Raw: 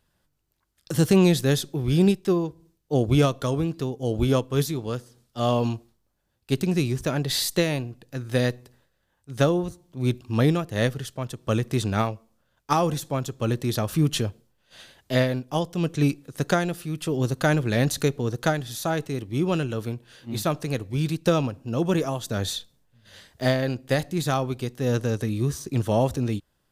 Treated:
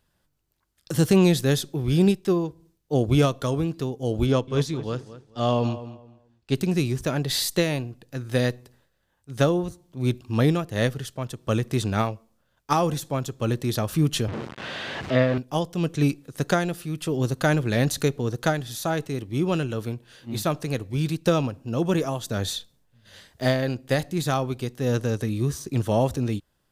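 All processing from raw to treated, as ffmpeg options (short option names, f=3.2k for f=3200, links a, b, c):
-filter_complex "[0:a]asettb=1/sr,asplit=3[a][b][c];[a]atrim=end=4.264[d];[b]atrim=start=4.26:end=6.54,asetpts=PTS-STARTPTS,afade=t=in:d=0.004:c=qsin,afade=t=out:st=2.276:d=0.004:c=qsin,lowpass=6.4k,asplit=2[e][f];[f]adelay=215,lowpass=f=2.9k:p=1,volume=-14dB,asplit=2[g][h];[h]adelay=215,lowpass=f=2.9k:p=1,volume=0.25,asplit=2[i][j];[j]adelay=215,lowpass=f=2.9k:p=1,volume=0.25[k];[e][g][i][k]amix=inputs=4:normalize=0,atrim=end_sample=100548[l];[c]atrim=start=6.536[m];[d][l]acrossfade=d=0.004:c1=hsin:c2=qsin[n];[n][m]acrossfade=d=0.004:c1=qsin:c2=hsin,asettb=1/sr,asplit=3[o][p][q];[o]atrim=end=14.284[r];[p]atrim=start=14.28:end=15.38,asetpts=PTS-STARTPTS,afade=t=in:d=0.004:c=qsin,afade=t=out:st=1.096:d=0.004:c=qsin,aeval=exprs='val(0)+0.5*0.0631*sgn(val(0))':c=same,highpass=110,lowpass=2.7k[s];[q]atrim=start=15.376[t];[r][s]acrossfade=d=0.004:c1=hsin:c2=qsin[u];[u][t]acrossfade=d=0.004:c1=qsin:c2=hsin"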